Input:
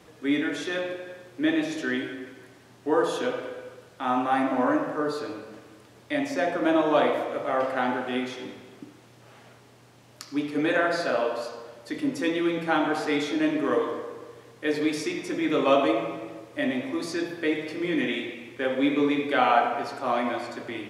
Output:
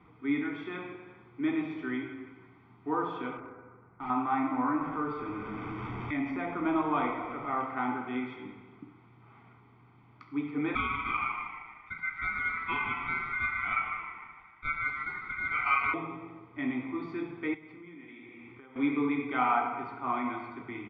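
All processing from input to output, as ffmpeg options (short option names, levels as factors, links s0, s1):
-filter_complex "[0:a]asettb=1/sr,asplit=3[s0][s1][s2];[s0]atrim=end=3.374[s3];[s1]atrim=start=3.37:end=4.1,asetpts=PTS-STARTPTS,afade=t=in:d=0.004:c=qsin,afade=t=out:st=0.726:d=0.004:c=qsin,lowpass=f=1800:w=0.5412,lowpass=f=1800:w=1.3066,acrusher=bits=9:mode=log:mix=0:aa=0.000001,asoftclip=type=hard:threshold=0.0316[s4];[s2]atrim=start=4.096[s5];[s3][s4]acrossfade=d=0.004:c1=hsin:c2=qsin[s6];[s6][s5]acrossfade=d=0.004:c1=qsin:c2=hsin,asettb=1/sr,asplit=3[s7][s8][s9];[s7]atrim=end=4.814[s10];[s8]atrim=start=4.81:end=7.61,asetpts=PTS-STARTPTS,afade=t=in:d=0.004:c=qsin,afade=t=out:st=2.796:d=0.004:c=qsin,aeval=exprs='val(0)+0.5*0.0141*sgn(val(0))':c=same,bandreject=f=4100:w=5.6,acompressor=mode=upward:threshold=0.0631:ratio=2.5:attack=3.2:release=140:knee=2.83:detection=peak[s11];[s9]atrim=start=7.606[s12];[s10][s11]acrossfade=d=0.004:c1=hsin:c2=qsin[s13];[s13][s12]acrossfade=d=0.004:c1=qsin:c2=hsin,asettb=1/sr,asplit=3[s14][s15][s16];[s14]atrim=end=10.754[s17];[s15]atrim=start=10.75:end=15.94,asetpts=PTS-STARTPTS,afade=t=in:d=0.004:c=qsin,afade=t=out:st=5.186:d=0.004:c=qsin,highshelf=f=3000:g=-7,aeval=exprs='val(0)*sin(2*PI*1800*n/s)':c=same,asplit=6[s18][s19][s20][s21][s22][s23];[s19]adelay=151,afreqshift=-140,volume=0.316[s24];[s20]adelay=302,afreqshift=-280,volume=0.14[s25];[s21]adelay=453,afreqshift=-420,volume=0.061[s26];[s22]adelay=604,afreqshift=-560,volume=0.0269[s27];[s23]adelay=755,afreqshift=-700,volume=0.0119[s28];[s18][s24][s25][s26][s27][s28]amix=inputs=6:normalize=0,atrim=end_sample=228879[s29];[s16]atrim=start=15.936[s30];[s17][s29]acrossfade=d=0.004:c1=hsin:c2=qsin[s31];[s31][s30]acrossfade=d=0.004:c1=qsin:c2=hsin,asettb=1/sr,asplit=3[s32][s33][s34];[s32]atrim=end=17.544[s35];[s33]atrim=start=17.54:end=18.76,asetpts=PTS-STARTPTS,afade=t=in:d=0.004:c=qsin,afade=t=out:st=1.216:d=0.004:c=qsin,bandreject=f=50:t=h:w=6,bandreject=f=100:t=h:w=6,bandreject=f=150:t=h:w=6,bandreject=f=200:t=h:w=6,bandreject=f=250:t=h:w=6,bandreject=f=300:t=h:w=6,bandreject=f=350:t=h:w=6,acompressor=threshold=0.0112:ratio=16:attack=3.2:release=140:knee=1:detection=peak[s36];[s34]atrim=start=18.756[s37];[s35][s36]acrossfade=d=0.004:c1=hsin:c2=qsin[s38];[s38][s37]acrossfade=d=0.004:c1=qsin:c2=hsin,lowpass=f=2400:w=0.5412,lowpass=f=2400:w=1.3066,aecho=1:1:0.9:0.88,volume=0.447"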